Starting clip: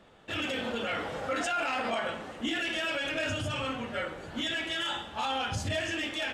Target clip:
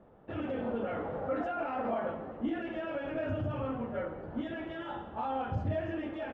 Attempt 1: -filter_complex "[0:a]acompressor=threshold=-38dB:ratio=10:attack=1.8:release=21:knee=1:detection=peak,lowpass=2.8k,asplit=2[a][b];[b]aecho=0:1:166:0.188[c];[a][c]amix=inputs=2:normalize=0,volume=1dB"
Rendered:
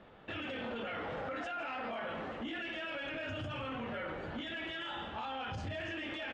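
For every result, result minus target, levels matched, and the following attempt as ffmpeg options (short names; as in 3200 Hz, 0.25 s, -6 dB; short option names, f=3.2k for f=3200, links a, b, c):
compressor: peak gain reduction +12.5 dB; 2000 Hz band +8.0 dB
-filter_complex "[0:a]lowpass=2.8k,asplit=2[a][b];[b]aecho=0:1:166:0.188[c];[a][c]amix=inputs=2:normalize=0,volume=1dB"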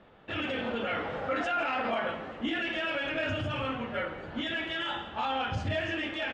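2000 Hz band +8.0 dB
-filter_complex "[0:a]lowpass=860,asplit=2[a][b];[b]aecho=0:1:166:0.188[c];[a][c]amix=inputs=2:normalize=0,volume=1dB"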